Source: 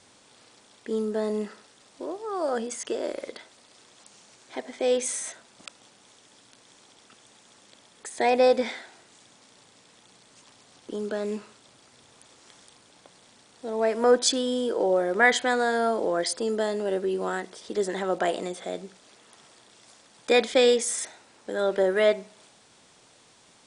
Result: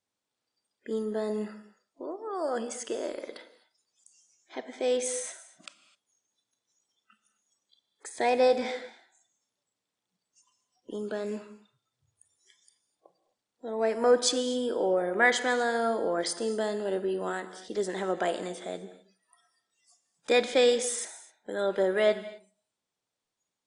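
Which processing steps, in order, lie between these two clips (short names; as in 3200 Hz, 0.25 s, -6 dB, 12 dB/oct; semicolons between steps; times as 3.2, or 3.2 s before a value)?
spectral noise reduction 27 dB; non-linear reverb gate 0.28 s flat, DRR 12 dB; gain -3.5 dB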